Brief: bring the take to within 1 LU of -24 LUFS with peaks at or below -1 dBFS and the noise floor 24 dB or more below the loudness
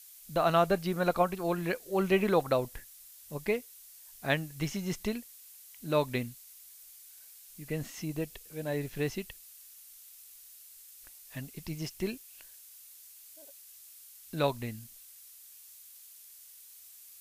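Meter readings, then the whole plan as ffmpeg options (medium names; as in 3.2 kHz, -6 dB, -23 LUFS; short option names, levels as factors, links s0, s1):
noise floor -53 dBFS; noise floor target -57 dBFS; loudness -32.5 LUFS; peak level -12.5 dBFS; loudness target -24.0 LUFS
-> -af "afftdn=nr=6:nf=-53"
-af "volume=2.66"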